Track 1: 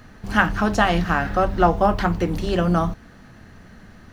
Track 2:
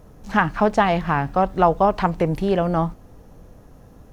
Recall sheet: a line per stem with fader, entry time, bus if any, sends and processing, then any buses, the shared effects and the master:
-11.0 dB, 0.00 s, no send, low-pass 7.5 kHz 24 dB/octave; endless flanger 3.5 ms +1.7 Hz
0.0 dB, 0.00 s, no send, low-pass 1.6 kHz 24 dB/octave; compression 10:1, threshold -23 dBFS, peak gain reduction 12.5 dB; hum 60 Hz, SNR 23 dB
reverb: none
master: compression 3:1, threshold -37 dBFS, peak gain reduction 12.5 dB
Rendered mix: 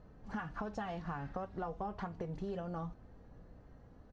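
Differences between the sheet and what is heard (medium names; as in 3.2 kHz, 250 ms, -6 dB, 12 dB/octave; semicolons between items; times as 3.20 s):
stem 1 -11.0 dB -> -21.5 dB; stem 2 0.0 dB -> -12.0 dB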